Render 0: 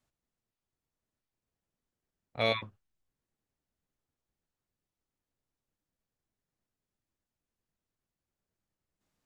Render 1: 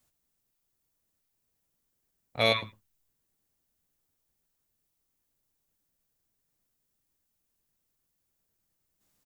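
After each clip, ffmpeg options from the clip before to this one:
ffmpeg -i in.wav -af "aemphasis=mode=production:type=50kf,aecho=1:1:107:0.075,volume=3dB" out.wav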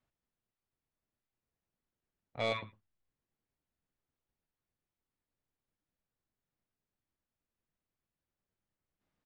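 ffmpeg -i in.wav -af "lowpass=2600,asoftclip=type=tanh:threshold=-19dB,volume=-5.5dB" out.wav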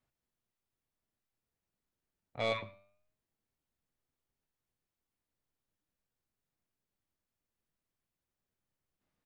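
ffmpeg -i in.wav -af "flanger=delay=7.5:depth=3.7:regen=90:speed=0.23:shape=triangular,volume=4.5dB" out.wav

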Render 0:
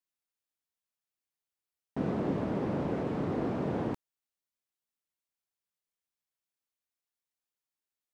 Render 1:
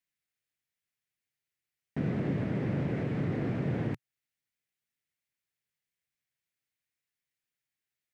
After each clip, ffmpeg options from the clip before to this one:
ffmpeg -i in.wav -filter_complex "[0:a]equalizer=frequency=125:width_type=o:width=1:gain=11,equalizer=frequency=1000:width_type=o:width=1:gain=-7,equalizer=frequency=2000:width_type=o:width=1:gain=10,asplit=2[link_01][link_02];[link_02]alimiter=level_in=2.5dB:limit=-24dB:level=0:latency=1:release=211,volume=-2.5dB,volume=0.5dB[link_03];[link_01][link_03]amix=inputs=2:normalize=0,volume=-6.5dB" out.wav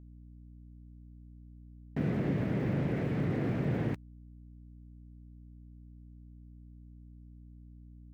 ffmpeg -i in.wav -af "aeval=exprs='val(0)*gte(abs(val(0)),0.00158)':channel_layout=same,aeval=exprs='val(0)+0.00316*(sin(2*PI*60*n/s)+sin(2*PI*2*60*n/s)/2+sin(2*PI*3*60*n/s)/3+sin(2*PI*4*60*n/s)/4+sin(2*PI*5*60*n/s)/5)':channel_layout=same" out.wav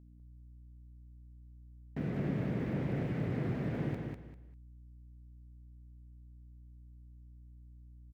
ffmpeg -i in.wav -af "aecho=1:1:198|396|594:0.631|0.158|0.0394,volume=-5dB" out.wav

